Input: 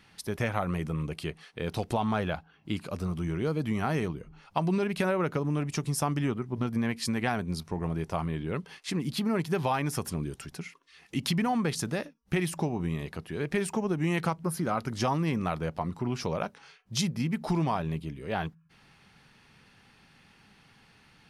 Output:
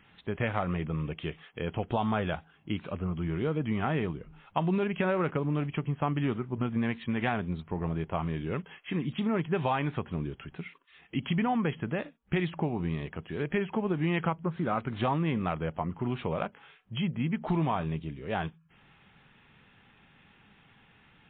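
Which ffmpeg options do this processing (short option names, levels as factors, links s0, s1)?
-ar 8000 -c:a libmp3lame -b:a 24k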